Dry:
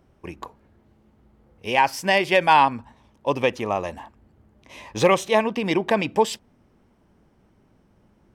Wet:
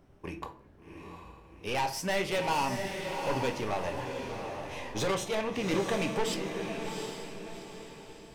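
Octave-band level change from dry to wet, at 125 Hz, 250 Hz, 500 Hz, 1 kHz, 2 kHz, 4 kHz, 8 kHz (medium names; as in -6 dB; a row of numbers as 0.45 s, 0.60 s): -4.5 dB, -7.0 dB, -9.0 dB, -12.0 dB, -10.5 dB, -7.0 dB, -3.0 dB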